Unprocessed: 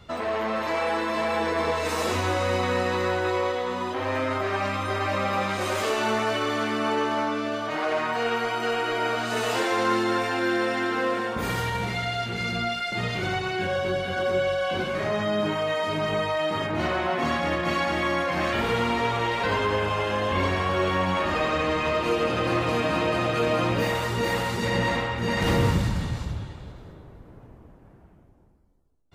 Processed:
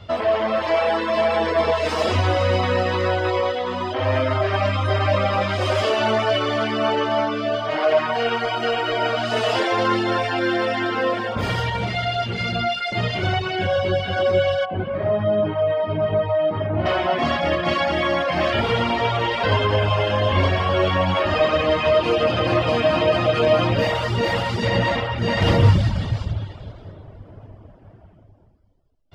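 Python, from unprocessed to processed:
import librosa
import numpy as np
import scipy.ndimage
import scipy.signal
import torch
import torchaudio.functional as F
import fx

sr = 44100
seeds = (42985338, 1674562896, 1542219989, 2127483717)

y = fx.spacing_loss(x, sr, db_at_10k=45, at=(14.64, 16.85), fade=0.02)
y = fx.bass_treble(y, sr, bass_db=0, treble_db=-8)
y = fx.dereverb_blind(y, sr, rt60_s=0.6)
y = fx.graphic_eq_31(y, sr, hz=(100, 630, 3150, 5000, 12500), db=(11, 8, 8, 9, -10))
y = y * 10.0 ** (4.0 / 20.0)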